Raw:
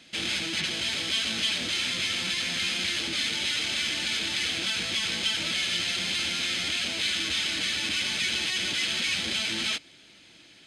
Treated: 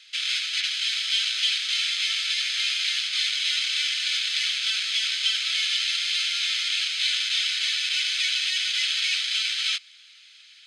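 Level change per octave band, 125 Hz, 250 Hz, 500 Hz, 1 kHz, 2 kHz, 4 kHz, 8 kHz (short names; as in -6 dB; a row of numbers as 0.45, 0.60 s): under -40 dB, under -40 dB, under -40 dB, -5.5 dB, +1.5 dB, +4.0 dB, +1.0 dB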